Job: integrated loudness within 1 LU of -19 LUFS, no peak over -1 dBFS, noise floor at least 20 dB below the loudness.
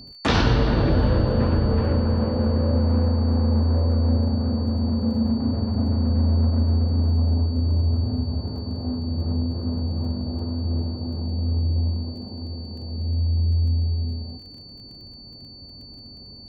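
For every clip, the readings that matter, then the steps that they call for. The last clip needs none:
ticks 20/s; steady tone 4500 Hz; tone level -42 dBFS; loudness -23.0 LUFS; peak -7.0 dBFS; loudness target -19.0 LUFS
-> de-click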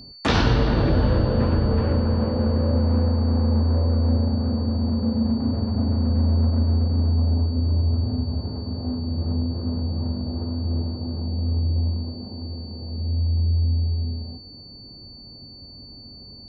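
ticks 0.061/s; steady tone 4500 Hz; tone level -42 dBFS
-> notch 4500 Hz, Q 30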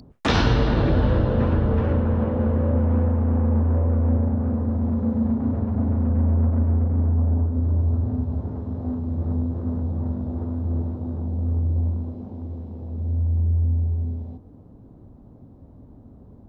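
steady tone none; loudness -23.0 LUFS; peak -7.0 dBFS; loudness target -19.0 LUFS
-> gain +4 dB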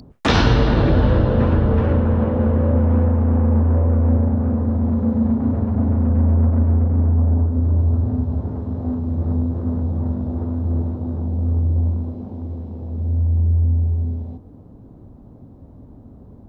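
loudness -19.0 LUFS; peak -3.0 dBFS; noise floor -43 dBFS

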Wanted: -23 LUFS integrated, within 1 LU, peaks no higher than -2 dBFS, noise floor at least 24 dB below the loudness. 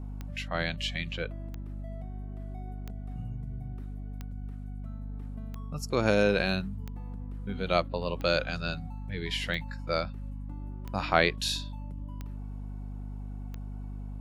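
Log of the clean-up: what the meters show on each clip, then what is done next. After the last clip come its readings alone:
clicks 11; hum 50 Hz; harmonics up to 250 Hz; hum level -36 dBFS; loudness -33.0 LUFS; peak -5.0 dBFS; loudness target -23.0 LUFS
-> de-click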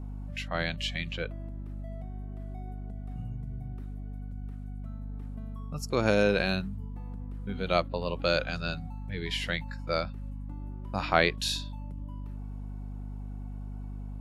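clicks 0; hum 50 Hz; harmonics up to 250 Hz; hum level -36 dBFS
-> notches 50/100/150/200/250 Hz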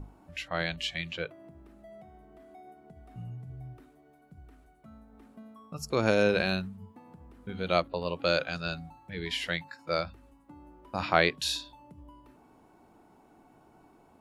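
hum none; loudness -31.0 LUFS; peak -5.5 dBFS; loudness target -23.0 LUFS
-> gain +8 dB; limiter -2 dBFS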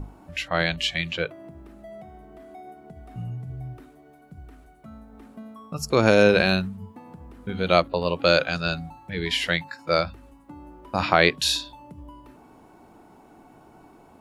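loudness -23.0 LUFS; peak -2.0 dBFS; noise floor -53 dBFS

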